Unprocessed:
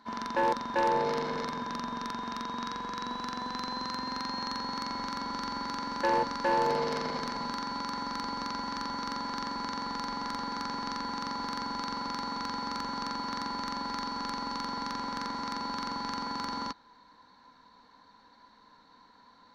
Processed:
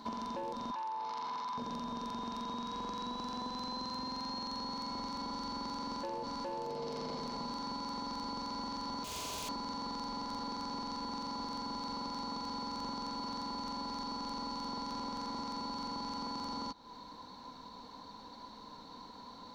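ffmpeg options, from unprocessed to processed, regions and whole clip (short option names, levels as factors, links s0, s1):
-filter_complex "[0:a]asettb=1/sr,asplit=3[s0][s1][s2];[s0]atrim=end=0.714[s3];[s1]atrim=start=0.71:end=1.58,asetpts=PTS-STARTPTS,afade=t=in:d=0.004:c=qsin,afade=t=out:st=0.866:d=0.004:c=qsin,highpass=210,lowpass=6900,lowshelf=f=690:t=q:w=3:g=-9.5[s4];[s2]atrim=start=1.576[s5];[s3][s4]acrossfade=d=0.004:c1=hsin:c2=qsin[s6];[s6][s5]acrossfade=d=0.004:c1=qsin:c2=hsin,asettb=1/sr,asplit=3[s7][s8][s9];[s7]atrim=end=9.044[s10];[s8]atrim=start=9.04:end=9.49,asetpts=PTS-STARTPTS,afade=t=in:d=0.004:c=qsin,afade=t=out:st=0.446:d=0.004:c=qsin,highpass=280,aeval=exprs='0.0141*(abs(mod(val(0)/0.0141+3,4)-2)-1)':c=same,acrusher=bits=3:mode=log:mix=0:aa=0.000001[s11];[s9]atrim=start=9.486[s12];[s10][s11]acrossfade=d=0.004:c1=hsin:c2=qsin[s13];[s13][s12]acrossfade=d=0.004:c1=qsin:c2=hsin,alimiter=level_in=1.88:limit=0.0631:level=0:latency=1:release=10,volume=0.531,equalizer=f=1700:w=1.5:g=-13.5,acompressor=threshold=0.00355:ratio=6,volume=3.55"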